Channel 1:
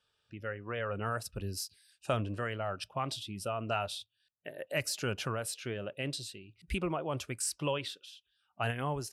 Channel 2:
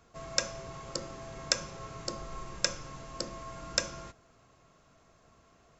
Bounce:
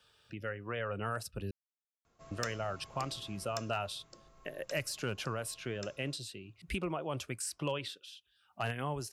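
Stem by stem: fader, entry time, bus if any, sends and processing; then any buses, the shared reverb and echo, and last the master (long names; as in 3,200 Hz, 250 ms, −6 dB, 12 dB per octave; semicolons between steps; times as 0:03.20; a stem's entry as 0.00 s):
−2.0 dB, 0.00 s, muted 0:01.51–0:02.31, no send, multiband upward and downward compressor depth 40%
0:03.33 −10.5 dB → 0:03.81 −19.5 dB, 2.05 s, no send, no processing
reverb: not used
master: gain into a clipping stage and back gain 24.5 dB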